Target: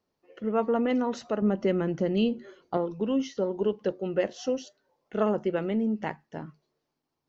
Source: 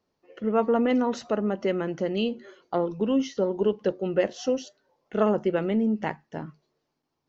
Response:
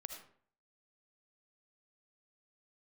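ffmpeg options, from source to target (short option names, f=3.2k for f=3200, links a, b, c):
-filter_complex "[0:a]asettb=1/sr,asplit=3[a][b][c];[a]atrim=end=1.424[d];[b]atrim=start=1.42:end=2.77,asetpts=PTS-STARTPTS,afade=t=in:d=0.004:c=qsin,afade=t=out:st=1.346:d=0.004:c=qsin,lowshelf=f=270:g=10[e];[c]atrim=start=2.766[f];[d][e]acrossfade=d=0.004:c1=hsin:c2=qsin[g];[g][f]acrossfade=d=0.004:c1=qsin:c2=hsin,volume=-3dB"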